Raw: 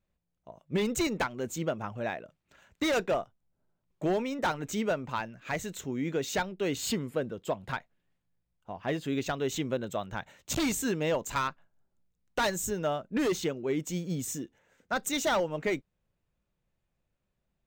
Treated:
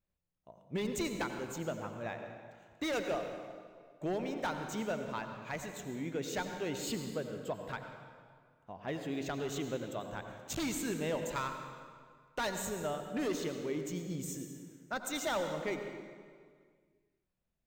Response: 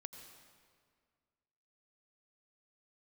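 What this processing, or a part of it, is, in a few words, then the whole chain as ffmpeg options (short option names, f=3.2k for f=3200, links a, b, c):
stairwell: -filter_complex "[1:a]atrim=start_sample=2205[a];[0:a][a]afir=irnorm=-1:irlink=0,volume=-1.5dB"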